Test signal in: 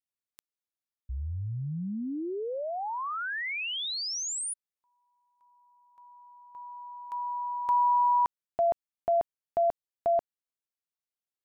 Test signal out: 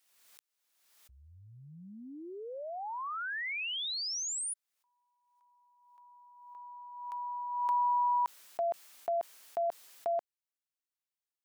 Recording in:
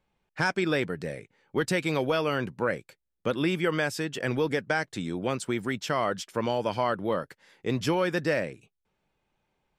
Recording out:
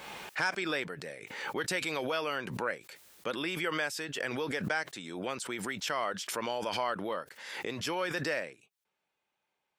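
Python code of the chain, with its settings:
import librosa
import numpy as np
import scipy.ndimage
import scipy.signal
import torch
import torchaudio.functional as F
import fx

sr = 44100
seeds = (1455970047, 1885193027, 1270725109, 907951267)

y = fx.highpass(x, sr, hz=860.0, slope=6)
y = fx.pre_swell(y, sr, db_per_s=45.0)
y = y * 10.0 ** (-2.5 / 20.0)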